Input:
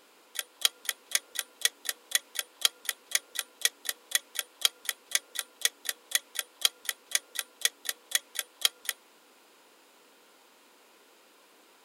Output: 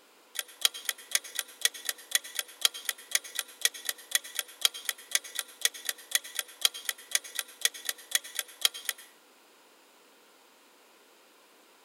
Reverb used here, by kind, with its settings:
dense smooth reverb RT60 0.55 s, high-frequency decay 0.8×, pre-delay 85 ms, DRR 15.5 dB

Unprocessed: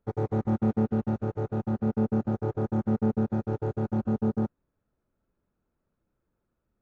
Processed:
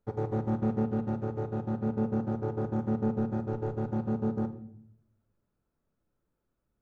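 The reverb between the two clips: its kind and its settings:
rectangular room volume 130 cubic metres, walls mixed, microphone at 0.34 metres
level −3 dB

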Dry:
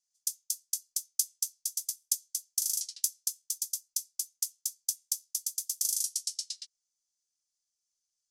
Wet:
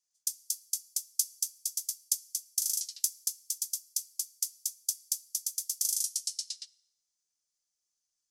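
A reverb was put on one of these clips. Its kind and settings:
feedback delay network reverb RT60 0.94 s, high-frequency decay 0.85×, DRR 18.5 dB

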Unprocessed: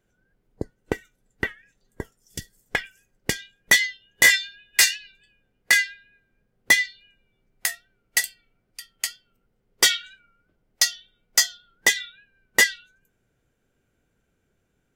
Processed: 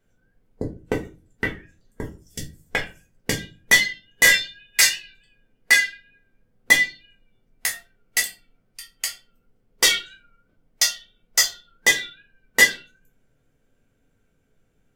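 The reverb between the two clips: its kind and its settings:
rectangular room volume 130 cubic metres, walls furnished, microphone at 1.6 metres
level −1.5 dB

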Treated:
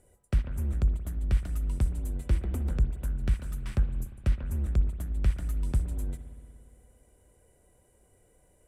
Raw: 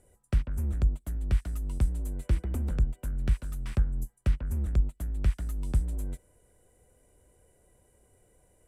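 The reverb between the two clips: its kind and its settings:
spring reverb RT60 2.3 s, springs 58 ms, chirp 25 ms, DRR 10.5 dB

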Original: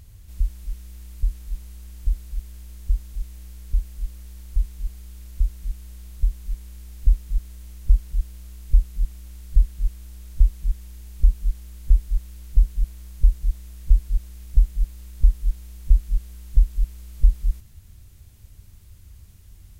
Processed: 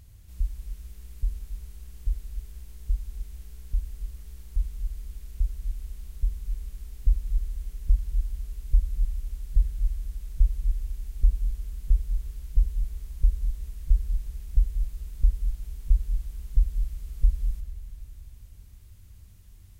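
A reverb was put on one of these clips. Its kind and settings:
spring reverb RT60 3.4 s, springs 31/45 ms, chirp 65 ms, DRR 7 dB
level −5 dB

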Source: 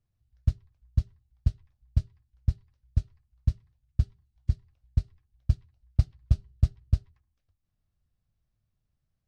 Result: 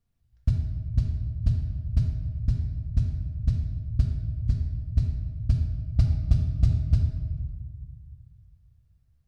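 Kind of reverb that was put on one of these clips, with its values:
rectangular room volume 1,600 cubic metres, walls mixed, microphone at 1.7 metres
level +1 dB

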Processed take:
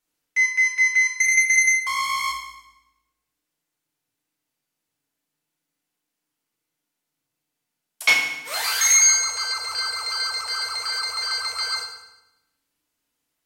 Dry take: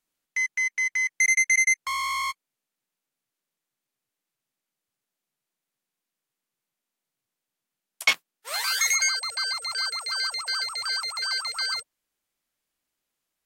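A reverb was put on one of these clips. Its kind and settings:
feedback delay network reverb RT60 0.93 s, low-frequency decay 1.5×, high-frequency decay 0.9×, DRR −2.5 dB

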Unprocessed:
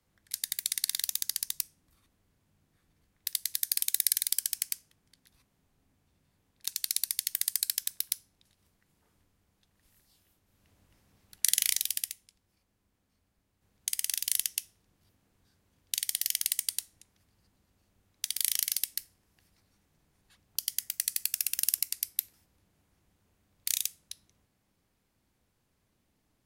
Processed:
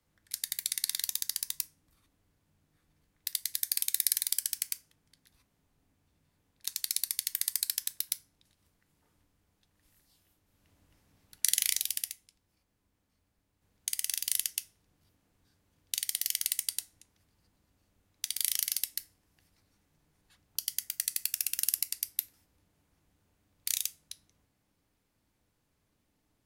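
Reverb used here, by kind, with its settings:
feedback delay network reverb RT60 0.39 s, high-frequency decay 0.5×, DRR 11.5 dB
level −1.5 dB

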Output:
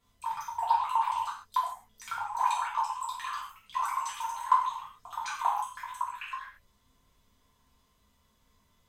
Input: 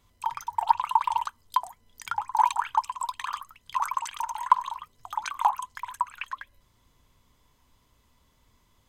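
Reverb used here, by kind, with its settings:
reverb whose tail is shaped and stops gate 180 ms falling, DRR −7 dB
level −10.5 dB

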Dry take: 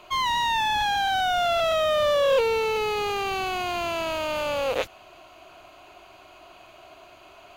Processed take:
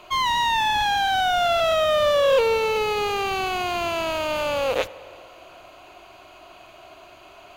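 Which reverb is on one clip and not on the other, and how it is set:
spring reverb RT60 2.3 s, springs 55 ms, chirp 50 ms, DRR 17.5 dB
level +2.5 dB

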